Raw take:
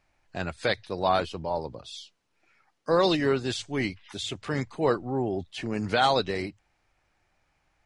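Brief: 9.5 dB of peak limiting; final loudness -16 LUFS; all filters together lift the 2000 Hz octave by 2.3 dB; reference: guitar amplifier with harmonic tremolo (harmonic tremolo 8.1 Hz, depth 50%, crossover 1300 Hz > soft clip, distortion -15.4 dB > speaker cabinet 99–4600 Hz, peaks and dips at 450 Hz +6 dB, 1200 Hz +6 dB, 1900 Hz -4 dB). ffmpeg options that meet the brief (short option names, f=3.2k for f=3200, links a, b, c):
-filter_complex "[0:a]equalizer=f=2k:t=o:g=4,alimiter=limit=-18dB:level=0:latency=1,acrossover=split=1300[a][b];[a]aeval=exprs='val(0)*(1-0.5/2+0.5/2*cos(2*PI*8.1*n/s))':c=same[c];[b]aeval=exprs='val(0)*(1-0.5/2-0.5/2*cos(2*PI*8.1*n/s))':c=same[d];[c][d]amix=inputs=2:normalize=0,asoftclip=threshold=-25dB,highpass=99,equalizer=f=450:t=q:w=4:g=6,equalizer=f=1.2k:t=q:w=4:g=6,equalizer=f=1.9k:t=q:w=4:g=-4,lowpass=f=4.6k:w=0.5412,lowpass=f=4.6k:w=1.3066,volume=18dB"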